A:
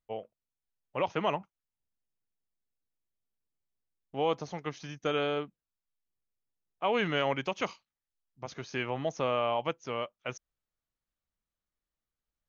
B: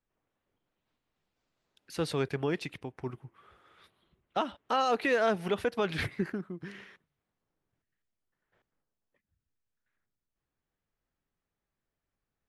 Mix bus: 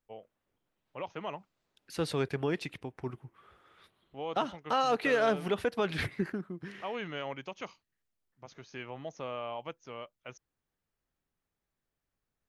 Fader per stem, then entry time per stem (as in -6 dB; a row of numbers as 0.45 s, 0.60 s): -9.0 dB, -0.5 dB; 0.00 s, 0.00 s